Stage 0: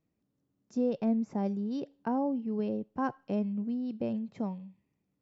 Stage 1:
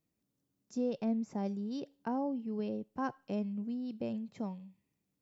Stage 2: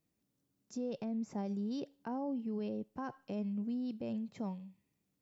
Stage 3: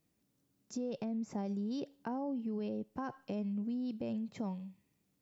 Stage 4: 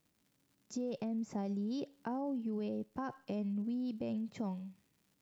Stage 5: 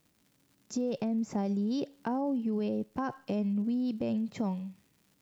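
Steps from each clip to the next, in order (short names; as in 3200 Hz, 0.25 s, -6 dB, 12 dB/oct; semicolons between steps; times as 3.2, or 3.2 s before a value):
high shelf 3500 Hz +10 dB; gain -4.5 dB
limiter -32.5 dBFS, peak gain reduction 8.5 dB; gain +1 dB
compressor 2.5:1, threshold -40 dBFS, peak gain reduction 4.5 dB; gain +4 dB
crackle 180/s -60 dBFS
hard clip -30 dBFS, distortion -40 dB; gain +6.5 dB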